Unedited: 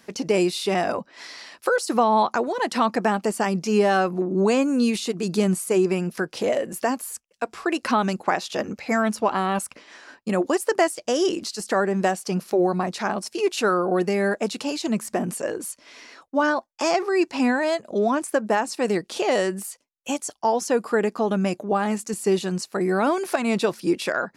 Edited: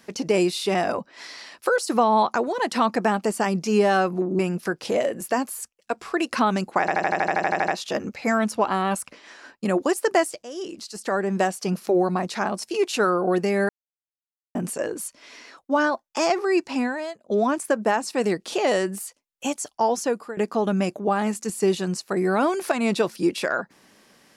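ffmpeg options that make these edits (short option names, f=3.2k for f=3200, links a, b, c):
-filter_complex "[0:a]asplit=18[a][b][c][d][e][f][g][h][i][j][k][l][m][n][o][p][q][r];[a]atrim=end=4.392[s];[b]atrim=start=5.908:end=8.402[t];[c]atrim=start=8.318:end=8.402[u];[d]atrim=start=8.318:end=8.402[v];[e]atrim=start=8.318:end=8.402[w];[f]atrim=start=8.318:end=8.402[x];[g]atrim=start=8.318:end=8.402[y];[h]atrim=start=8.318:end=8.402[z];[i]atrim=start=8.318:end=8.402[aa];[j]atrim=start=8.318:end=8.402[ab];[k]atrim=start=8.318:end=8.402[ac];[l]atrim=start=8.318:end=8.402[ad];[m]atrim=start=8.318:end=11.07,asetpts=PTS-STARTPTS,afade=t=out:st=2.748:d=0.004:c=hsin:silence=0.133352[ae];[n]atrim=start=11.07:end=14.33,asetpts=PTS-STARTPTS,afade=t=in:d=1.04:silence=0.133352,afade=t=out:st=3.256:d=0.004:c=hsin[af];[o]atrim=start=14.33:end=15.19,asetpts=PTS-STARTPTS,volume=0[ag];[p]atrim=start=15.19:end=17.94,asetpts=PTS-STARTPTS,afade=t=in:d=0.004:c=hsin,afade=t=out:st=1.96:d=0.79:silence=0.0944061[ah];[q]atrim=start=17.94:end=21.01,asetpts=PTS-STARTPTS,afade=t=in:d=0.004:c=hsin:silence=0.0944061,afade=t=out:st=2.69:d=0.38:silence=0.1[ai];[r]atrim=start=21.01,asetpts=PTS-STARTPTS,afade=t=in:d=0.004:c=hsin:silence=0.1[aj];[s][t]acrossfade=d=0.004:c1=hsin:c2=hsin[ak];[ak][u]acrossfade=d=0.004:c1=hsin:c2=hsin[al];[al][v]acrossfade=d=0.004:c1=hsin:c2=hsin[am];[am][w]acrossfade=d=0.004:c1=hsin:c2=hsin[an];[an][x]acrossfade=d=0.004:c1=hsin:c2=hsin[ao];[ao][y]acrossfade=d=0.004:c1=hsin:c2=hsin[ap];[ap][z]acrossfade=d=0.004:c1=hsin:c2=hsin[aq];[aq][aa]acrossfade=d=0.004:c1=hsin:c2=hsin[ar];[ar][ab]acrossfade=d=0.004:c1=hsin:c2=hsin[as];[as][ac]acrossfade=d=0.004:c1=hsin:c2=hsin[at];[at][ad]acrossfade=d=0.004:c1=hsin:c2=hsin[au];[ae][af][ag][ah][ai][aj]concat=n=6:v=0:a=1[av];[au][av]acrossfade=d=0.004:c1=hsin:c2=hsin"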